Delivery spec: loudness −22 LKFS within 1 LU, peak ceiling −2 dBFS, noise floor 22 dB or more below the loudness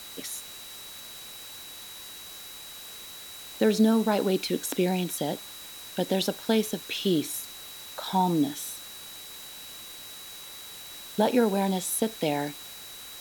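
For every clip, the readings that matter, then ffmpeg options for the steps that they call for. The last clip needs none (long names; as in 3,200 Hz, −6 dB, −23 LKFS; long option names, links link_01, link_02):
interfering tone 3,900 Hz; level of the tone −45 dBFS; background noise floor −43 dBFS; target noise floor −50 dBFS; integrated loudness −27.5 LKFS; sample peak −10.5 dBFS; target loudness −22.0 LKFS
→ -af "bandreject=frequency=3900:width=30"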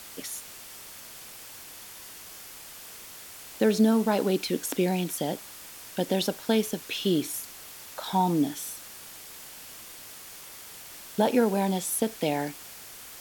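interfering tone none found; background noise floor −45 dBFS; target noise floor −50 dBFS
→ -af "afftdn=noise_reduction=6:noise_floor=-45"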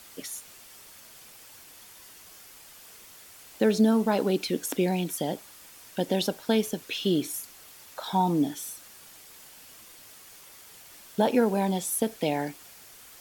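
background noise floor −50 dBFS; integrated loudness −27.5 LKFS; sample peak −11.0 dBFS; target loudness −22.0 LKFS
→ -af "volume=5.5dB"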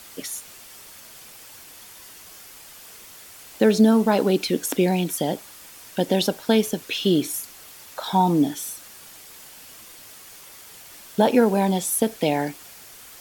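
integrated loudness −22.0 LKFS; sample peak −5.5 dBFS; background noise floor −45 dBFS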